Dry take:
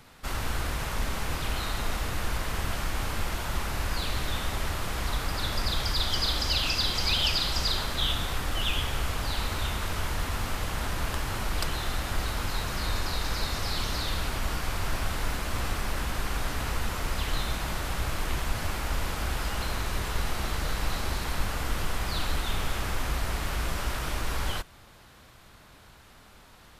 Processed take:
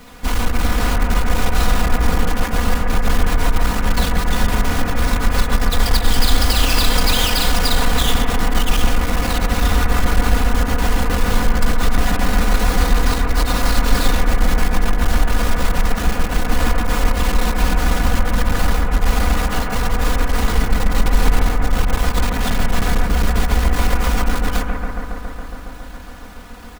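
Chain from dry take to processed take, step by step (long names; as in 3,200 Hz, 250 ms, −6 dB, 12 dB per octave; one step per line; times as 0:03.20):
each half-wave held at its own peak
comb filter 4.1 ms, depth 91%
brickwall limiter −15.5 dBFS, peak gain reduction 39.5 dB
bucket-brigade delay 138 ms, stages 2,048, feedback 81%, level −4 dB
level +5 dB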